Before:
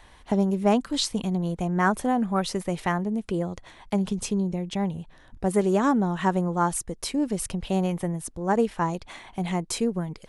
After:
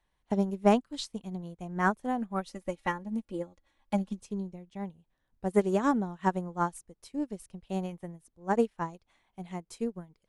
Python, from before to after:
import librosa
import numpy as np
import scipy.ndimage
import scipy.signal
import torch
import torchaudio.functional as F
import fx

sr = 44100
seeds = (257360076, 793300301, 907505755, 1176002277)

y = fx.dmg_noise_colour(x, sr, seeds[0], colour='brown', level_db=-54.0)
y = fx.comb(y, sr, ms=3.6, depth=0.83, at=(2.46, 4.22))
y = fx.upward_expand(y, sr, threshold_db=-35.0, expansion=2.5)